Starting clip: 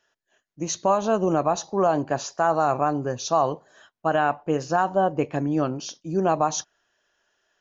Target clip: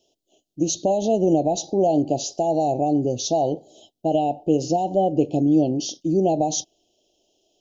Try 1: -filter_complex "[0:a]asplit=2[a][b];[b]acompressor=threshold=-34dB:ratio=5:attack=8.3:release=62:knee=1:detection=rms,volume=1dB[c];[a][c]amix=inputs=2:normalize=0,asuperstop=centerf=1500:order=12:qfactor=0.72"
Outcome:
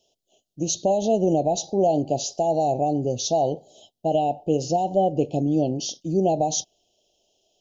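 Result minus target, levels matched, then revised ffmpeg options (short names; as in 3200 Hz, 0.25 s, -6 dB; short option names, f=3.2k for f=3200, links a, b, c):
250 Hz band -2.5 dB
-filter_complex "[0:a]asplit=2[a][b];[b]acompressor=threshold=-34dB:ratio=5:attack=8.3:release=62:knee=1:detection=rms,equalizer=f=310:w=1.9:g=14,volume=1dB[c];[a][c]amix=inputs=2:normalize=0,asuperstop=centerf=1500:order=12:qfactor=0.72"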